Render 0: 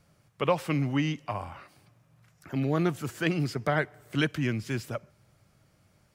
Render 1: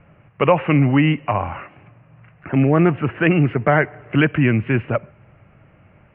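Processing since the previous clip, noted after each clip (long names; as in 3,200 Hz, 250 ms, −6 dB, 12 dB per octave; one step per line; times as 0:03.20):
Chebyshev low-pass filter 2,800 Hz, order 6
in parallel at +2 dB: brickwall limiter −23.5 dBFS, peak gain reduction 11.5 dB
on the sum: level +7.5 dB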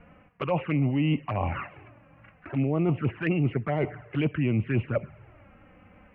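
reversed playback
downward compressor 6 to 1, threshold −24 dBFS, peak gain reduction 14 dB
reversed playback
flanger swept by the level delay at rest 4.6 ms, full sweep at −22.5 dBFS
level +2 dB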